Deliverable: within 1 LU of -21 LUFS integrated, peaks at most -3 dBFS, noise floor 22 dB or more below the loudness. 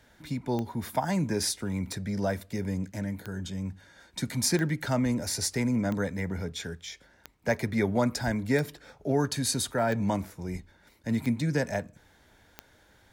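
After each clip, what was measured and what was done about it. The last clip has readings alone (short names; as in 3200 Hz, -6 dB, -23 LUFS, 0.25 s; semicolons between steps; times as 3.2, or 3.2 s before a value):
clicks 10; loudness -30.0 LUFS; peak -12.5 dBFS; loudness target -21.0 LUFS
-> de-click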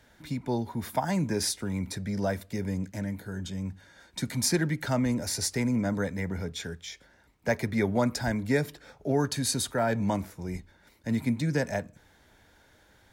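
clicks 0; loudness -30.0 LUFS; peak -12.5 dBFS; loudness target -21.0 LUFS
-> gain +9 dB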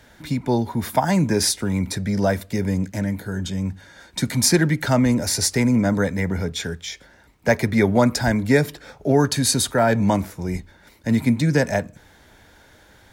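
loudness -21.0 LUFS; peak -3.5 dBFS; noise floor -52 dBFS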